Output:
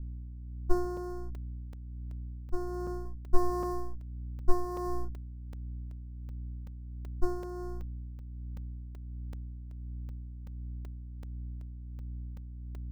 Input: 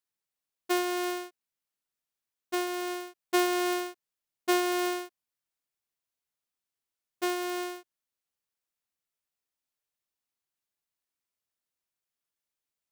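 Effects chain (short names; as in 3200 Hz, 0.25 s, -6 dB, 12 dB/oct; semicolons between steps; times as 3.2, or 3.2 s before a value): minimum comb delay 0.94 ms; 3.04–5.05 doubler 13 ms -2 dB; hum 60 Hz, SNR 12 dB; elliptic band-stop 1600–4800 Hz, stop band 40 dB; tilt -3 dB/oct; tremolo 1.4 Hz, depth 40%; low shelf 400 Hz +6 dB; crackling interface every 0.38 s, samples 128, zero, from 0.97; gain -5 dB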